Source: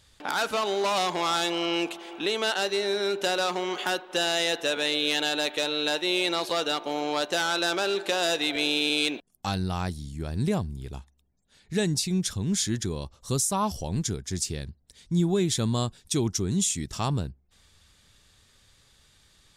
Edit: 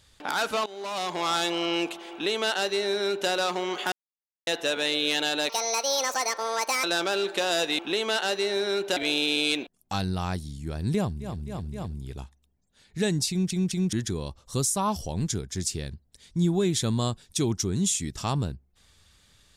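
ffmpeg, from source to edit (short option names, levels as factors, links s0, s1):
-filter_complex "[0:a]asplit=14[s0][s1][s2][s3][s4][s5][s6][s7][s8][s9][s10][s11][s12][s13];[s0]atrim=end=0.66,asetpts=PTS-STARTPTS,afade=t=out:st=0.656:d=0.004:c=hsin:silence=0.105925[s14];[s1]atrim=start=0.66:end=3.92,asetpts=PTS-STARTPTS,afade=t=in:d=0.66:silence=0.105925,afade=t=out:st=3.256:d=0.004:c=hsin[s15];[s2]atrim=start=3.92:end=4.47,asetpts=PTS-STARTPTS,volume=0[s16];[s3]atrim=start=4.47:end=5.494,asetpts=PTS-STARTPTS,afade=t=in:d=0.004:c=hsin[s17];[s4]atrim=start=5.49:end=7.55,asetpts=PTS-STARTPTS,asetrate=67473,aresample=44100,atrim=end_sample=59376,asetpts=PTS-STARTPTS[s18];[s5]atrim=start=7.546:end=8.502[s19];[s6]atrim=start=2.118:end=3.302[s20];[s7]atrim=start=8.498:end=10.96[s21];[s8]atrim=start=10.46:end=10.96[s22];[s9]atrim=start=10.46:end=10.96[s23];[s10]atrim=start=10.46:end=12.262[s24];[s11]atrim=start=12.048:end=12.262[s25];[s12]atrim=start=12.048:end=12.262[s26];[s13]atrim=start=12.678[s27];[s14][s15][s16][s17]concat=n=4:v=0:a=1[s28];[s28][s18]acrossfade=d=0.004:c1=hsin:c2=hsin[s29];[s29][s19]acrossfade=d=0.004:c1=hsin:c2=hsin[s30];[s30][s20]acrossfade=d=0.004:c1=hsin:c2=hsin[s31];[s31][s21]acrossfade=d=0.004:c1=hsin:c2=hsin[s32];[s32][s22]acrossfade=d=0.24:c1=tri:c2=tri[s33];[s33][s23]acrossfade=d=0.24:c1=tri:c2=tri[s34];[s34][s24]acrossfade=d=0.24:c1=tri:c2=tri[s35];[s35][s25]acrossfade=d=0.004:c1=hsin:c2=hsin[s36];[s36][s26]acrossfade=d=0.004:c1=hsin:c2=hsin[s37];[s37][s27]acrossfade=d=0.004:c1=hsin:c2=hsin"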